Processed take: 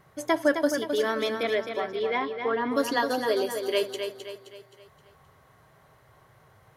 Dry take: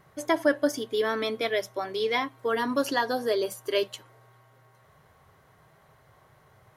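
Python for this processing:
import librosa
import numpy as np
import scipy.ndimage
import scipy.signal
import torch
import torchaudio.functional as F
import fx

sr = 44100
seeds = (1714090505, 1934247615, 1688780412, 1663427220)

y = fx.lowpass(x, sr, hz=fx.line((1.42, 3200.0), (2.7, 1800.0)), slope=12, at=(1.42, 2.7), fade=0.02)
y = fx.echo_feedback(y, sr, ms=262, feedback_pct=44, wet_db=-7)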